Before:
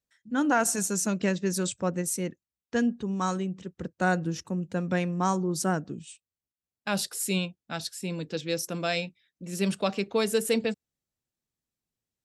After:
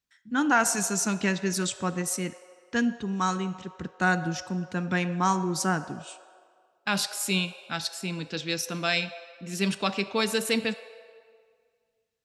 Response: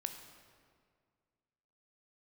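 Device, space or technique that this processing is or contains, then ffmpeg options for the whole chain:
filtered reverb send: -filter_complex "[0:a]asplit=2[s0][s1];[s1]highpass=f=530:w=0.5412,highpass=f=530:w=1.3066,lowpass=6900[s2];[1:a]atrim=start_sample=2205[s3];[s2][s3]afir=irnorm=-1:irlink=0,volume=1[s4];[s0][s4]amix=inputs=2:normalize=0"

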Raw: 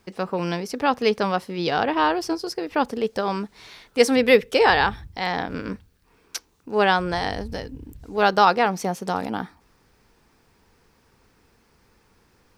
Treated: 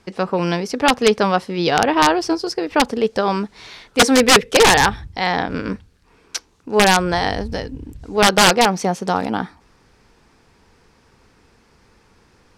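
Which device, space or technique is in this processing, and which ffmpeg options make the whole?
overflowing digital effects unit: -af "aeval=exprs='(mod(2.99*val(0)+1,2)-1)/2.99':c=same,lowpass=8800,volume=2"

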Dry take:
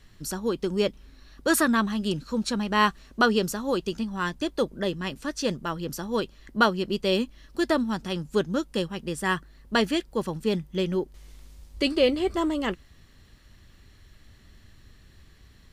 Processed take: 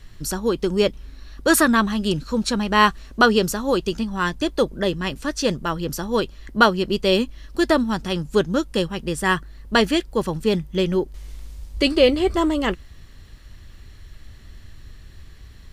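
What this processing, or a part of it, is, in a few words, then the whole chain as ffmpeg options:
low shelf boost with a cut just above: -af "lowshelf=f=85:g=7.5,equalizer=f=210:t=o:w=0.89:g=-2.5,volume=2"

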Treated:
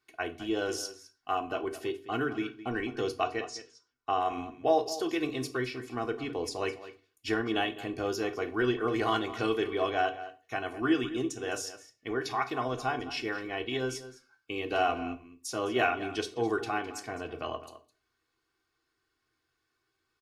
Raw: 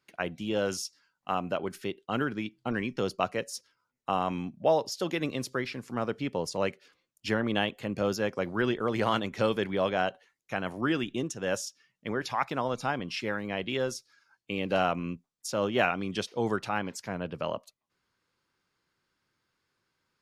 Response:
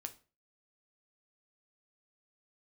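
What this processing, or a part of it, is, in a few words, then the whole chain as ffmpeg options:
microphone above a desk: -filter_complex "[0:a]aecho=1:1:2.7:0.88[s0];[1:a]atrim=start_sample=2205[s1];[s0][s1]afir=irnorm=-1:irlink=0,asettb=1/sr,asplit=3[s2][s3][s4];[s2]atrim=end=3.244[s5];[s3]atrim=start=3.24:end=4.21,asetpts=PTS-STARTPTS,afade=t=in:d=0.004:c=qsin,afade=t=out:st=0.966:d=0.004:c=qsin,lowpass=f=6600:w=0.5412,lowpass=f=6600:w=1.3066[s6];[s4]atrim=start=4.206[s7];[s5][s6]acrossfade=d=0.004:c1=hsin:c2=qsin[s8];[s8][s7]acrossfade=d=0.004:c1=qsin:c2=hsin,asplit=2[s9][s10];[s10]adelay=209.9,volume=0.2,highshelf=f=4000:g=-4.72[s11];[s9][s11]amix=inputs=2:normalize=0"

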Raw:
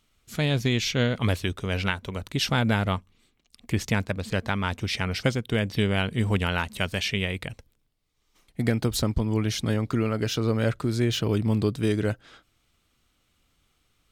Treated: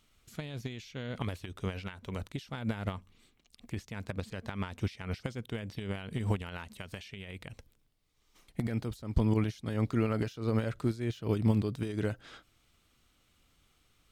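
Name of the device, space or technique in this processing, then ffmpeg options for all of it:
de-esser from a sidechain: -filter_complex "[0:a]asplit=2[s0][s1];[s1]highpass=5200,apad=whole_len=622287[s2];[s0][s2]sidechaincompress=threshold=0.00224:ratio=16:attack=2.6:release=94"

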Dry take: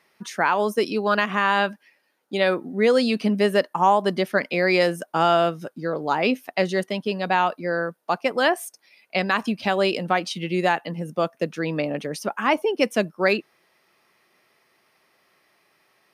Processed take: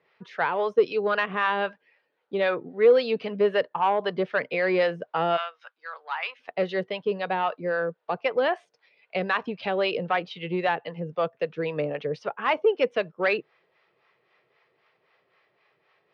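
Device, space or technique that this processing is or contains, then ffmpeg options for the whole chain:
guitar amplifier with harmonic tremolo: -filter_complex "[0:a]acrossover=split=600[s0][s1];[s0]aeval=exprs='val(0)*(1-0.7/2+0.7/2*cos(2*PI*3.8*n/s))':c=same[s2];[s1]aeval=exprs='val(0)*(1-0.7/2-0.7/2*cos(2*PI*3.8*n/s))':c=same[s3];[s2][s3]amix=inputs=2:normalize=0,asoftclip=type=tanh:threshold=0.188,highpass=77,equalizer=f=130:t=q:w=4:g=4,equalizer=f=220:t=q:w=4:g=-9,equalizer=f=310:t=q:w=4:g=-5,equalizer=f=460:t=q:w=4:g=8,lowpass=f=3700:w=0.5412,lowpass=f=3700:w=1.3066,asplit=3[s4][s5][s6];[s4]afade=t=out:st=5.36:d=0.02[s7];[s5]highpass=f=1000:w=0.5412,highpass=f=1000:w=1.3066,afade=t=in:st=5.36:d=0.02,afade=t=out:st=6.39:d=0.02[s8];[s6]afade=t=in:st=6.39:d=0.02[s9];[s7][s8][s9]amix=inputs=3:normalize=0"

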